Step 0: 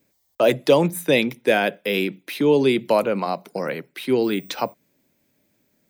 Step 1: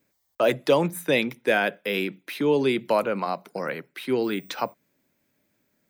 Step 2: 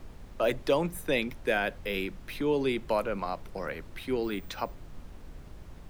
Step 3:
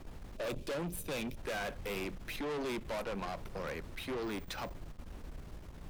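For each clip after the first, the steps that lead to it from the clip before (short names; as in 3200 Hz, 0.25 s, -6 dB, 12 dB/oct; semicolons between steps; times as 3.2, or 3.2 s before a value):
bell 1400 Hz +5.5 dB 1.2 oct; gain -5 dB
added noise brown -37 dBFS; gain -6 dB
spectral gain 0.36–1.36, 630–2300 Hz -11 dB; tube stage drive 37 dB, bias 0.5; gain +2 dB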